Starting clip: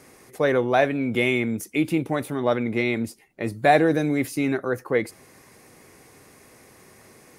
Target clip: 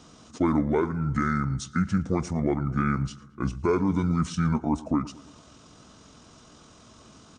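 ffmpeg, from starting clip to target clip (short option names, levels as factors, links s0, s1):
-filter_complex "[0:a]alimiter=limit=0.224:level=0:latency=1:release=365,asetrate=26222,aresample=44100,atempo=1.68179,asplit=2[s0][s1];[s1]adelay=112,lowpass=f=3100:p=1,volume=0.112,asplit=2[s2][s3];[s3]adelay=112,lowpass=f=3100:p=1,volume=0.55,asplit=2[s4][s5];[s5]adelay=112,lowpass=f=3100:p=1,volume=0.55,asplit=2[s6][s7];[s7]adelay=112,lowpass=f=3100:p=1,volume=0.55,asplit=2[s8][s9];[s9]adelay=112,lowpass=f=3100:p=1,volume=0.55[s10];[s2][s4][s6][s8][s10]amix=inputs=5:normalize=0[s11];[s0][s11]amix=inputs=2:normalize=0"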